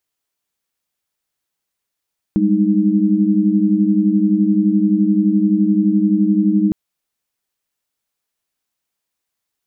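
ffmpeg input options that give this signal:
-f lavfi -i "aevalsrc='0.158*(sin(2*PI*196*t)+sin(2*PI*207.65*t)+sin(2*PI*311.13*t))':d=4.36:s=44100"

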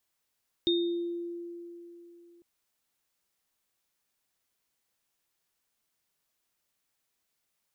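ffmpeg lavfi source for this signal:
-f lavfi -i "aevalsrc='0.0668*pow(10,-3*t/3.29)*sin(2*PI*344*t)+0.0596*pow(10,-3*t/0.62)*sin(2*PI*3670*t)':d=1.75:s=44100"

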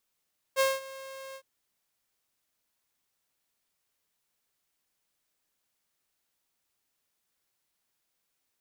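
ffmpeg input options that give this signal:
-f lavfi -i "aevalsrc='0.119*(2*mod(536*t,1)-1)':d=0.861:s=44100,afade=t=in:d=0.039,afade=t=out:st=0.039:d=0.201:silence=0.1,afade=t=out:st=0.79:d=0.071"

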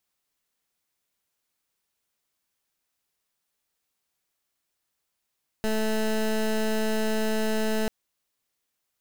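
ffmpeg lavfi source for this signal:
-f lavfi -i "aevalsrc='0.0562*(2*lt(mod(218*t,1),0.19)-1)':d=2.24:s=44100"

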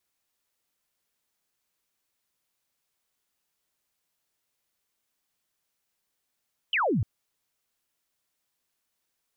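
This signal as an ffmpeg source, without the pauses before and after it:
-f lavfi -i "aevalsrc='0.0794*clip(t/0.002,0,1)*clip((0.3-t)/0.002,0,1)*sin(2*PI*3200*0.3/log(86/3200)*(exp(log(86/3200)*t/0.3)-1))':d=0.3:s=44100"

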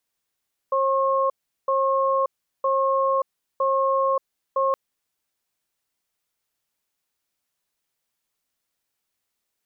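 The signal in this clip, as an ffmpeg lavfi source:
-f lavfi -i "aevalsrc='0.0891*(sin(2*PI*538*t)+sin(2*PI*1080*t))*clip(min(mod(t,0.96),0.58-mod(t,0.96))/0.005,0,1)':d=4.02:s=44100"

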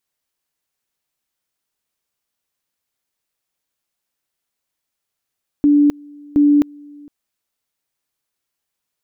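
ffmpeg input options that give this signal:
-f lavfi -i "aevalsrc='pow(10,(-8.5-27.5*gte(mod(t,0.72),0.26))/20)*sin(2*PI*291*t)':d=1.44:s=44100"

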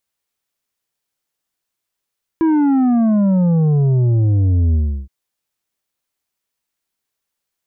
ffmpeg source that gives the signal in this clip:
-f lavfi -i "aevalsrc='0.251*clip((2.67-t)/0.34,0,1)*tanh(2.24*sin(2*PI*330*2.67/log(65/330)*(exp(log(65/330)*t/2.67)-1)))/tanh(2.24)':d=2.67:s=44100"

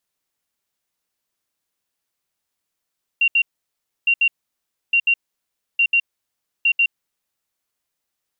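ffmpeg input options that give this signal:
-f lavfi -i "aevalsrc='0.237*sin(2*PI*2760*t)*clip(min(mod(mod(t,0.86),0.14),0.07-mod(mod(t,0.86),0.14))/0.005,0,1)*lt(mod(t,0.86),0.28)':d=4.3:s=44100"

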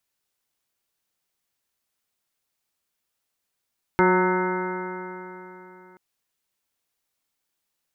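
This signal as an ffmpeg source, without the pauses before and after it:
-f lavfi -i "aevalsrc='0.075*pow(10,-3*t/3.46)*sin(2*PI*182.08*t)+0.133*pow(10,-3*t/3.46)*sin(2*PI*364.61*t)+0.0376*pow(10,-3*t/3.46)*sin(2*PI*548.06*t)+0.0251*pow(10,-3*t/3.46)*sin(2*PI*732.88*t)+0.1*pow(10,-3*t/3.46)*sin(2*PI*919.51*t)+0.0178*pow(10,-3*t/3.46)*sin(2*PI*1108.39*t)+0.0531*pow(10,-3*t/3.46)*sin(2*PI*1299.95*t)+0.0562*pow(10,-3*t/3.46)*sin(2*PI*1494.62*t)+0.0237*pow(10,-3*t/3.46)*sin(2*PI*1692.81*t)+0.00944*pow(10,-3*t/3.46)*sin(2*PI*1894.9*t)+0.0422*pow(10,-3*t/3.46)*sin(2*PI*2101.28*t)':d=1.98:s=44100"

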